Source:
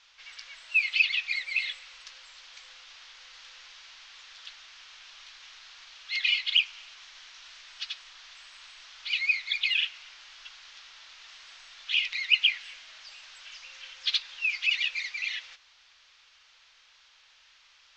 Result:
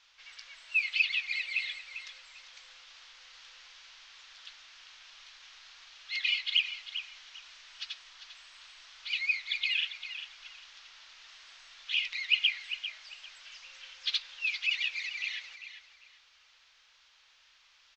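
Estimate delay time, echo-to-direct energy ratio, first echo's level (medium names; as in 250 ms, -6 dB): 397 ms, -11.0 dB, -11.0 dB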